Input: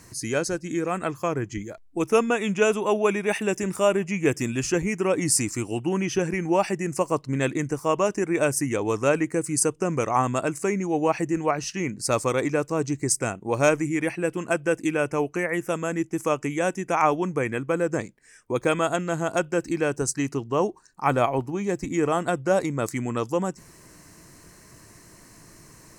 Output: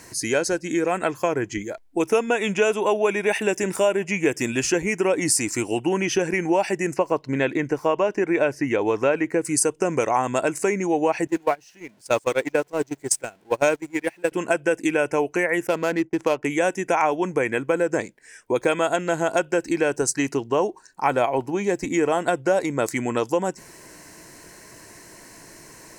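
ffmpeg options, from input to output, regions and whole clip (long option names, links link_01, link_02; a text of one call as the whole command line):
ffmpeg -i in.wav -filter_complex "[0:a]asettb=1/sr,asplit=3[link_01][link_02][link_03];[link_01]atrim=end=6.944[link_04];[link_02]atrim=start=6.94:end=9.45,asetpts=PTS-STARTPTS,afade=type=in:duration=0.004:curve=qsin,afade=type=out:start_time=2.506:duration=0.004:curve=qsin,acrossover=split=4100[link_05][link_06];[link_06]acompressor=threshold=-50dB:ratio=4:attack=1:release=60[link_07];[link_05][link_07]amix=inputs=2:normalize=0,equalizer=frequency=8800:width_type=o:width=0.63:gain=-8.5[link_08];[link_03]atrim=start=9.446[link_09];[link_04][link_08]acrossfade=duration=0.004:curve1=hsin:curve2=qsin[link_10];[link_10][link_09]acrossfade=duration=0.004:curve1=qsin:curve2=hsin,asettb=1/sr,asplit=3[link_11][link_12][link_13];[link_11]atrim=end=11.274[link_14];[link_12]atrim=start=11.27:end=14.32,asetpts=PTS-STARTPTS,afade=type=in:duration=0.004:curve=qsin,afade=type=out:start_time=3.046:duration=0.004:curve=qsin,aeval=exprs='val(0)+0.5*0.0251*sgn(val(0))':channel_layout=same,agate=range=-27dB:threshold=-22dB:ratio=16:release=100:detection=peak[link_15];[link_13]atrim=start=14.316[link_16];[link_14][link_15]acrossfade=duration=0.004:curve1=hsin:curve2=qsin[link_17];[link_17][link_16]acrossfade=duration=0.004:curve1=qsin:curve2=hsin,asettb=1/sr,asplit=3[link_18][link_19][link_20];[link_18]atrim=end=15.674[link_21];[link_19]atrim=start=15.67:end=16.45,asetpts=PTS-STARTPTS,afade=type=in:duration=0.004:curve=qsin,afade=type=out:start_time=0.776:duration=0.004:curve=qsin,agate=range=-33dB:threshold=-39dB:ratio=3:release=100:detection=peak,adynamicsmooth=sensitivity=8:basefreq=1400[link_22];[link_20]atrim=start=16.446[link_23];[link_21][link_22]acrossfade=duration=0.004:curve1=hsin:curve2=qsin[link_24];[link_24][link_23]acrossfade=duration=0.004:curve1=qsin:curve2=hsin,bass=frequency=250:gain=-11,treble=frequency=4000:gain=-3,bandreject=frequency=1200:width=5.3,acompressor=threshold=-26dB:ratio=3,volume=8dB" out.wav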